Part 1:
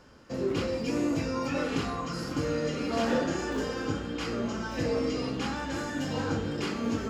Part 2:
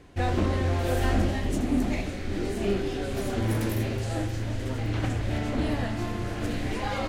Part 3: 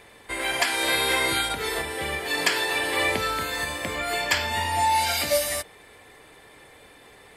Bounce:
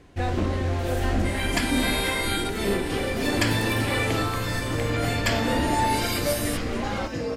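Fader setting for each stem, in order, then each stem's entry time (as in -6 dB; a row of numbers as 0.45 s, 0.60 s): -0.5 dB, 0.0 dB, -3.5 dB; 2.35 s, 0.00 s, 0.95 s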